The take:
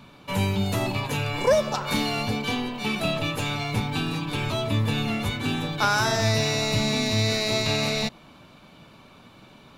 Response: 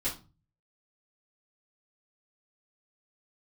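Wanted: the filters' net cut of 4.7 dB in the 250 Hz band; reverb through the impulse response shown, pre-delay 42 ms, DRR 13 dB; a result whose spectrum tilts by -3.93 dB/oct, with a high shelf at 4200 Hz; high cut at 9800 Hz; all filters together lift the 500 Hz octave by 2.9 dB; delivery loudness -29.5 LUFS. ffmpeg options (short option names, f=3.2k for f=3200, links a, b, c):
-filter_complex "[0:a]lowpass=9.8k,equalizer=f=250:t=o:g=-7.5,equalizer=f=500:t=o:g=5.5,highshelf=f=4.2k:g=-7.5,asplit=2[a][b];[1:a]atrim=start_sample=2205,adelay=42[c];[b][c]afir=irnorm=-1:irlink=0,volume=-18dB[d];[a][d]amix=inputs=2:normalize=0,volume=-4dB"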